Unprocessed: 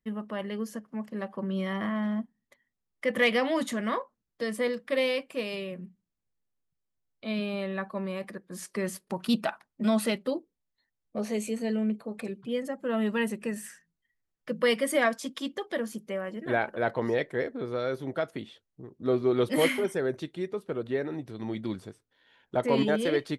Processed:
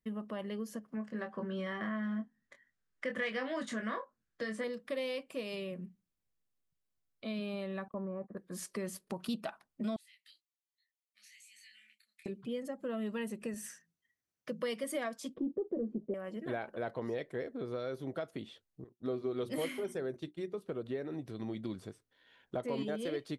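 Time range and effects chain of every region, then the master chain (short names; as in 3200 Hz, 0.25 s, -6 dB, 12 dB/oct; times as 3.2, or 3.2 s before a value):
0.95–4.64 LPF 8500 Hz 24 dB/oct + bell 1600 Hz +11.5 dB 0.57 oct + doubler 23 ms -6 dB
7.88–8.37 LPF 1300 Hz 24 dB/oct + gate -45 dBFS, range -25 dB
9.96–12.26 elliptic high-pass 1900 Hz, stop band 50 dB + compressor 8:1, threshold -49 dBFS + detuned doubles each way 41 cents
13.54–14.84 HPF 91 Hz + bell 6000 Hz +7 dB 0.21 oct
15.34–16.14 sample leveller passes 2 + synth low-pass 380 Hz, resonance Q 2.6
18.84–20.62 notches 60/120/180/240/300/360 Hz + expander -39 dBFS
whole clip: compressor 2.5:1, threshold -35 dBFS; dynamic EQ 1800 Hz, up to -4 dB, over -55 dBFS, Q 1.4; notch 880 Hz, Q 12; gain -2 dB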